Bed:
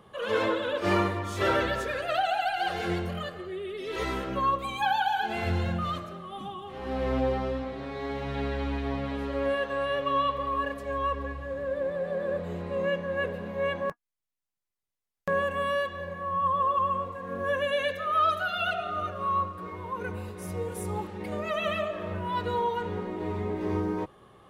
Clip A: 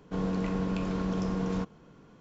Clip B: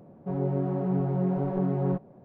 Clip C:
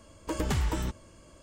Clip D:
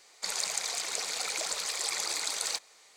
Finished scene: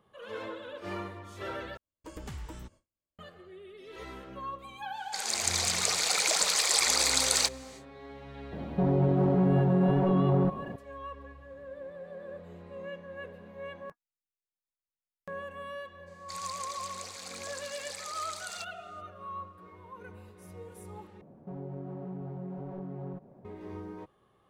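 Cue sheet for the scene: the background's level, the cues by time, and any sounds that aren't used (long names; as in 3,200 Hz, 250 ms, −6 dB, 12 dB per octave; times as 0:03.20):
bed −13 dB
0:01.77: overwrite with C −13 dB + noise gate with hold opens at −42 dBFS, closes at −49 dBFS, hold 58 ms, range −31 dB
0:04.90: mix in D −3.5 dB, fades 0.10 s + automatic gain control
0:08.52: mix in B −17 dB + boost into a limiter +28.5 dB
0:16.06: mix in D −10.5 dB, fades 0.02 s
0:21.21: overwrite with B −3 dB + downward compressor 4 to 1, threshold −35 dBFS
not used: A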